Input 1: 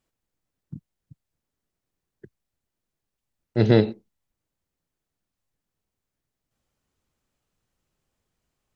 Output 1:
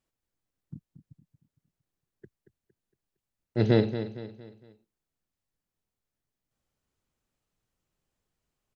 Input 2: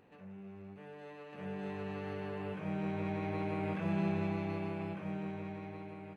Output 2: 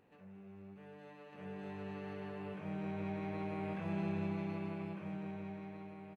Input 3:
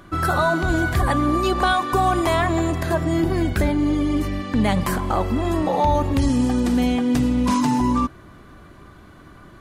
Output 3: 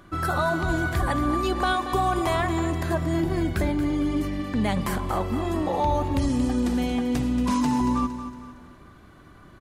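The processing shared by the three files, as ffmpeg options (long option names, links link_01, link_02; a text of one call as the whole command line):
ffmpeg -i in.wav -af "aecho=1:1:230|460|690|920:0.282|0.116|0.0474|0.0194,volume=-5dB" out.wav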